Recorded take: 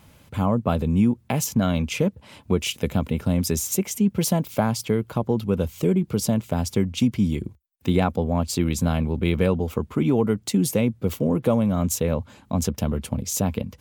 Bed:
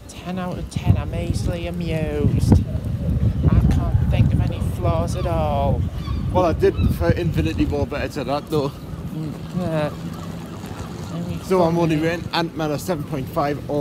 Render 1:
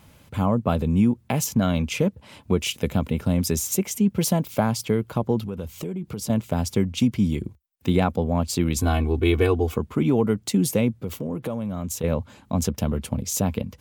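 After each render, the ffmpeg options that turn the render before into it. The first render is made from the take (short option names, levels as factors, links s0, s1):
-filter_complex "[0:a]asettb=1/sr,asplit=3[s0][s1][s2];[s0]atrim=end=5.464[s3];[s1]atrim=start=5.46:end=6.3,asetpts=PTS-STARTPTS,afade=t=in:d=0.004:c=qsin,afade=t=out:st=0.836:d=0.004:c=qsin,acompressor=threshold=0.0398:ratio=4:attack=3.2:release=140:knee=1:detection=peak[s4];[s2]atrim=start=6.296[s5];[s3][s4]acrossfade=d=0.004:c1=hsin:c2=qsin[s6];[s6][s5]acrossfade=d=0.004:c1=qsin:c2=hsin,asettb=1/sr,asplit=3[s7][s8][s9];[s7]atrim=end=8.764[s10];[s8]atrim=start=8.76:end=9.77,asetpts=PTS-STARTPTS,afade=t=in:d=0.004:c=qsin,afade=t=out:st=1.006:d=0.004:c=qsin,aecho=1:1:2.7:0.99,atrim=end_sample=44541[s11];[s9]atrim=start=9.766[s12];[s10][s11]acrossfade=d=0.004:c1=hsin:c2=qsin[s13];[s13][s12]acrossfade=d=0.004:c1=qsin:c2=hsin,asettb=1/sr,asplit=3[s14][s15][s16];[s14]atrim=end=11.014[s17];[s15]atrim=start=11.01:end=12.04,asetpts=PTS-STARTPTS,afade=t=in:d=0.004:c=qsin,afade=t=out:st=1.026:d=0.004:c=qsin,acompressor=threshold=0.0398:ratio=2.5:attack=3.2:release=140:knee=1:detection=peak[s18];[s16]atrim=start=12.036[s19];[s17][s18]acrossfade=d=0.004:c1=hsin:c2=qsin[s20];[s20][s19]acrossfade=d=0.004:c1=qsin:c2=hsin"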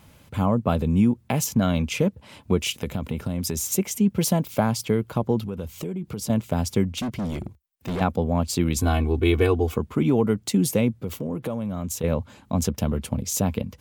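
-filter_complex "[0:a]asettb=1/sr,asplit=3[s0][s1][s2];[s0]atrim=end=2.794[s3];[s1]atrim=start=2.79:end=3.67,asetpts=PTS-STARTPTS,afade=t=in:d=0.004:c=qsin,afade=t=out:st=0.876:d=0.004:c=qsin,acompressor=threshold=0.0794:ratio=6:attack=3.2:release=140:knee=1:detection=peak[s4];[s2]atrim=start=3.666[s5];[s3][s4]acrossfade=d=0.004:c1=hsin:c2=qsin[s6];[s6][s5]acrossfade=d=0.004:c1=qsin:c2=hsin,asettb=1/sr,asplit=3[s7][s8][s9];[s7]atrim=end=6.944[s10];[s8]atrim=start=6.94:end=8.01,asetpts=PTS-STARTPTS,afade=t=in:d=0.004:c=qsin,afade=t=out:st=1.066:d=0.004:c=qsin,asoftclip=type=hard:threshold=0.0562[s11];[s9]atrim=start=8.006[s12];[s10][s11]acrossfade=d=0.004:c1=hsin:c2=qsin[s13];[s13][s12]acrossfade=d=0.004:c1=qsin:c2=hsin"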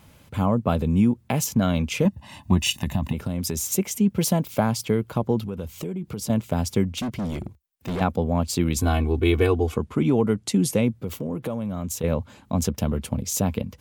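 -filter_complex "[0:a]asettb=1/sr,asplit=3[s0][s1][s2];[s0]atrim=end=2.054[s3];[s1]atrim=start=2.05:end=3.13,asetpts=PTS-STARTPTS,afade=t=in:d=0.004:c=qsin,afade=t=out:st=1.076:d=0.004:c=qsin,aecho=1:1:1.1:0.98,atrim=end_sample=47628[s4];[s2]atrim=start=3.126[s5];[s3][s4]acrossfade=d=0.004:c1=hsin:c2=qsin[s6];[s6][s5]acrossfade=d=0.004:c1=qsin:c2=hsin,asettb=1/sr,asplit=3[s7][s8][s9];[s7]atrim=end=9.614[s10];[s8]atrim=start=9.61:end=10.84,asetpts=PTS-STARTPTS,afade=t=in:d=0.004:c=qsin,afade=t=out:st=1.226:d=0.004:c=qsin,lowpass=f=12000:w=0.5412,lowpass=f=12000:w=1.3066[s11];[s9]atrim=start=10.836[s12];[s10][s11]acrossfade=d=0.004:c1=hsin:c2=qsin[s13];[s13][s12]acrossfade=d=0.004:c1=qsin:c2=hsin"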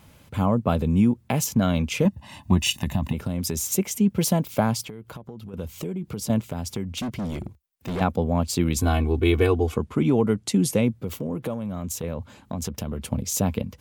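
-filter_complex "[0:a]asettb=1/sr,asplit=3[s0][s1][s2];[s0]atrim=end=4.834[s3];[s1]atrim=start=4.83:end=5.54,asetpts=PTS-STARTPTS,afade=t=in:d=0.004:c=qsin,afade=t=out:st=0.706:d=0.004:c=qsin,acompressor=threshold=0.02:ratio=12:attack=3.2:release=140:knee=1:detection=peak[s4];[s2]atrim=start=5.536[s5];[s3][s4]acrossfade=d=0.004:c1=hsin:c2=qsin[s6];[s6][s5]acrossfade=d=0.004:c1=qsin:c2=hsin,asettb=1/sr,asplit=3[s7][s8][s9];[s7]atrim=end=6.404[s10];[s8]atrim=start=6.4:end=7.96,asetpts=PTS-STARTPTS,afade=t=in:d=0.004:c=qsin,afade=t=out:st=1.556:d=0.004:c=qsin,acompressor=threshold=0.0447:ratio=3:attack=3.2:release=140:knee=1:detection=peak[s11];[s9]atrim=start=7.956[s12];[s10][s11]acrossfade=d=0.004:c1=hsin:c2=qsin[s13];[s13][s12]acrossfade=d=0.004:c1=qsin:c2=hsin,asettb=1/sr,asplit=3[s14][s15][s16];[s14]atrim=end=11.534[s17];[s15]atrim=start=11.53:end=13.04,asetpts=PTS-STARTPTS,afade=t=in:d=0.004:c=qsin,afade=t=out:st=1.506:d=0.004:c=qsin,acompressor=threshold=0.0562:ratio=6:attack=3.2:release=140:knee=1:detection=peak[s18];[s16]atrim=start=13.036[s19];[s17][s18]acrossfade=d=0.004:c1=hsin:c2=qsin[s20];[s20][s19]acrossfade=d=0.004:c1=qsin:c2=hsin"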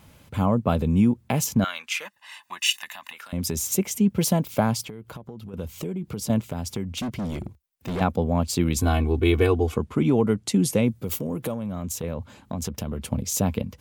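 -filter_complex "[0:a]asettb=1/sr,asplit=3[s0][s1][s2];[s0]atrim=end=1.644[s3];[s1]atrim=start=1.64:end=3.33,asetpts=PTS-STARTPTS,afade=t=in:d=0.004:c=qsin,afade=t=out:st=1.686:d=0.004:c=qsin,highpass=f=1500:t=q:w=1.7[s4];[s2]atrim=start=3.326[s5];[s3][s4]acrossfade=d=0.004:c1=hsin:c2=qsin[s6];[s6][s5]acrossfade=d=0.004:c1=qsin:c2=hsin,asettb=1/sr,asplit=3[s7][s8][s9];[s7]atrim=end=10.884[s10];[s8]atrim=start=10.88:end=11.52,asetpts=PTS-STARTPTS,afade=t=in:d=0.004:c=qsin,afade=t=out:st=0.636:d=0.004:c=qsin,highshelf=f=5200:g=10.5[s11];[s9]atrim=start=11.516[s12];[s10][s11]acrossfade=d=0.004:c1=hsin:c2=qsin[s13];[s13][s12]acrossfade=d=0.004:c1=qsin:c2=hsin"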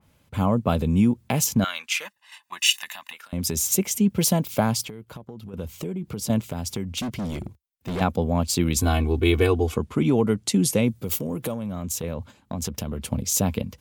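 -af "agate=range=0.355:threshold=0.00891:ratio=16:detection=peak,adynamicequalizer=threshold=0.00891:dfrequency=2400:dqfactor=0.7:tfrequency=2400:tqfactor=0.7:attack=5:release=100:ratio=0.375:range=2:mode=boostabove:tftype=highshelf"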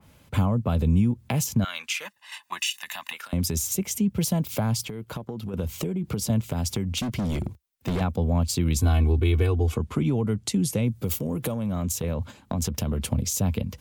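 -filter_complex "[0:a]asplit=2[s0][s1];[s1]alimiter=limit=0.168:level=0:latency=1:release=180,volume=1[s2];[s0][s2]amix=inputs=2:normalize=0,acrossover=split=140[s3][s4];[s4]acompressor=threshold=0.0355:ratio=3[s5];[s3][s5]amix=inputs=2:normalize=0"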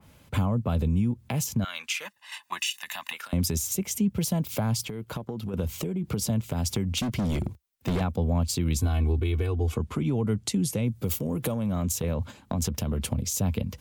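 -af "alimiter=limit=0.15:level=0:latency=1:release=406"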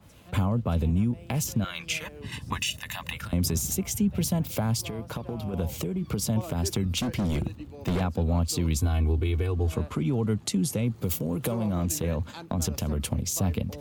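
-filter_complex "[1:a]volume=0.0841[s0];[0:a][s0]amix=inputs=2:normalize=0"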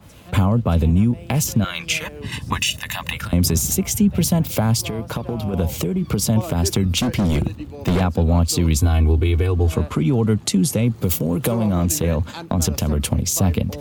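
-af "volume=2.66"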